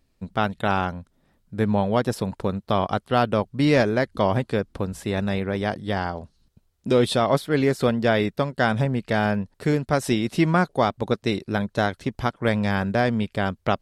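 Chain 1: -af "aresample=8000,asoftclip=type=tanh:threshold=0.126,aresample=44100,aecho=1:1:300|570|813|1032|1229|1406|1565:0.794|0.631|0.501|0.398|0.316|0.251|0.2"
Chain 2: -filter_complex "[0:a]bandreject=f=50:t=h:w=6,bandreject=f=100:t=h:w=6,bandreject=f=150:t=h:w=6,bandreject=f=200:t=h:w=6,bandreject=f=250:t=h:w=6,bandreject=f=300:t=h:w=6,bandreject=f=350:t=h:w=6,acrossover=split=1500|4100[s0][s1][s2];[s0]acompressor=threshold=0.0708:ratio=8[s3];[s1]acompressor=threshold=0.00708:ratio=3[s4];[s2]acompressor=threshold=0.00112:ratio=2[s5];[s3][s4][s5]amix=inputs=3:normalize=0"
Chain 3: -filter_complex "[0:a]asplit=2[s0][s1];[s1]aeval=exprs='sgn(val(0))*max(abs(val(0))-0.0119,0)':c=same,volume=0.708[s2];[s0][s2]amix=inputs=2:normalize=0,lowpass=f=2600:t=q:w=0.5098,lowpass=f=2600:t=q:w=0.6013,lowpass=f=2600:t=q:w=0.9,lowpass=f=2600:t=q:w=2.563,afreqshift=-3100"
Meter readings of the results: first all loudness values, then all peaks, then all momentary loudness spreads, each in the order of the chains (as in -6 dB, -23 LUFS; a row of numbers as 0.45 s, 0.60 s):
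-23.0 LUFS, -29.0 LUFS, -16.0 LUFS; -9.5 dBFS, -11.5 dBFS, -1.0 dBFS; 5 LU, 4 LU, 7 LU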